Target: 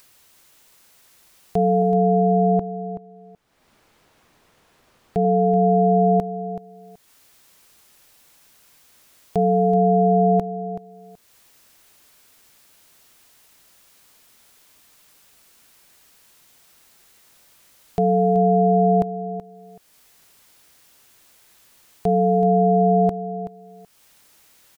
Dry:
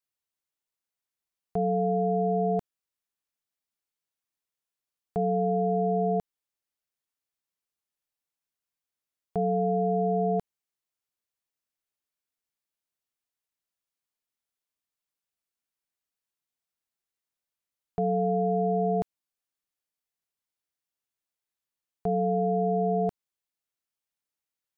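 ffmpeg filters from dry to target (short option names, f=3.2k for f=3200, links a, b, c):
-filter_complex "[0:a]asettb=1/sr,asplit=3[a][b][c];[a]atrim=end=1.824[d];[b]atrim=start=1.82:end=5.25,asetpts=PTS-STARTPTS,afade=t=in:d=0.004:c=qsin,afade=t=out:st=3.426:d=0.004:c=qsin,lowpass=f=1k:p=1[e];[c]atrim=start=5.246[f];[d][e]acrossfade=d=0.004:c1=hsin:c2=qsin[g];[g][f]acrossfade=d=0.004:c1=qsin:c2=hsin,acompressor=mode=upward:threshold=-41dB:ratio=2.5,aecho=1:1:378|756:0.251|0.0477,volume=8dB"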